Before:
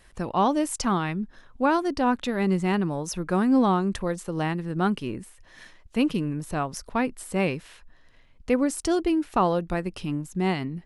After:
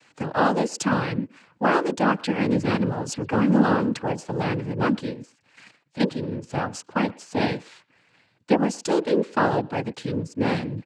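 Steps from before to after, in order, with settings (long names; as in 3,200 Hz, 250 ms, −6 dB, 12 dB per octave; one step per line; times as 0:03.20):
0:05.13–0:06.49: output level in coarse steps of 10 dB
cochlear-implant simulation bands 8
far-end echo of a speakerphone 120 ms, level −23 dB
level +2 dB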